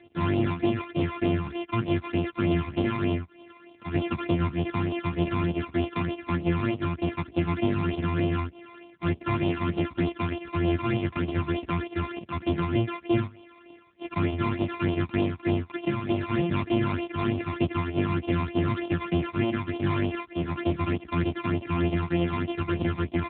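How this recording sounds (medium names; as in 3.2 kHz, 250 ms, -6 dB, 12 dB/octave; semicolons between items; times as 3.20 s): a buzz of ramps at a fixed pitch in blocks of 128 samples; phasing stages 12, 3.3 Hz, lowest notch 500–1700 Hz; AMR-NB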